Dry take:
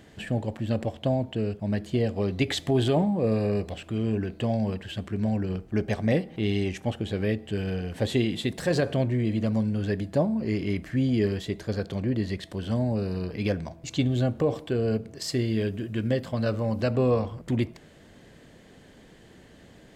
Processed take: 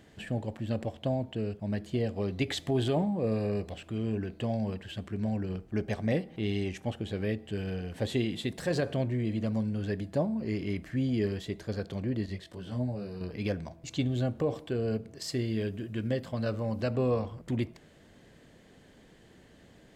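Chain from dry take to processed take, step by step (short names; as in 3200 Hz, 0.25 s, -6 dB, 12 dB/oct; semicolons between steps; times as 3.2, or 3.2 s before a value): 12.26–13.21 detuned doubles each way 13 cents; gain -5 dB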